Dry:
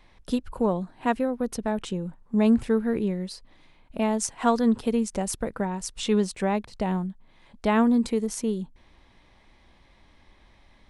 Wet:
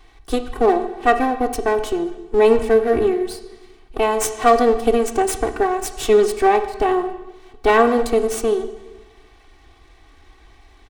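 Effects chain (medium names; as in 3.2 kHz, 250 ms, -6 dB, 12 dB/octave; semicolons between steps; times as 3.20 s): comb filter that takes the minimum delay 2.7 ms; comb 2.6 ms, depth 48%; on a send: reverberation RT60 1.2 s, pre-delay 10 ms, DRR 8.5 dB; on the sum: trim +6.5 dB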